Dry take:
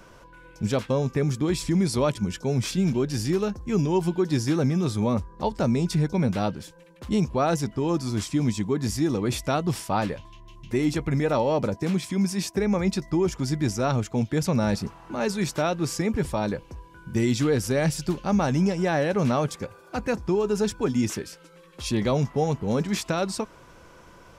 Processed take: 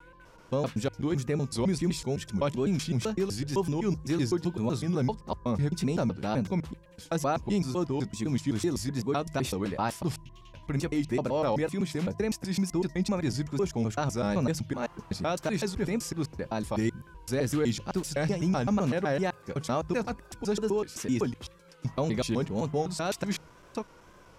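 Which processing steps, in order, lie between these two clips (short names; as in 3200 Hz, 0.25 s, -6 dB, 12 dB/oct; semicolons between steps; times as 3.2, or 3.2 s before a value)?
slices in reverse order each 0.127 s, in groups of 4; wow and flutter 80 cents; de-hum 51.58 Hz, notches 3; gain -4.5 dB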